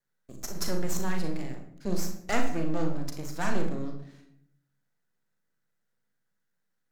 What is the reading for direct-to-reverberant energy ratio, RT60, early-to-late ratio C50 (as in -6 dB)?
3.0 dB, 0.70 s, 6.5 dB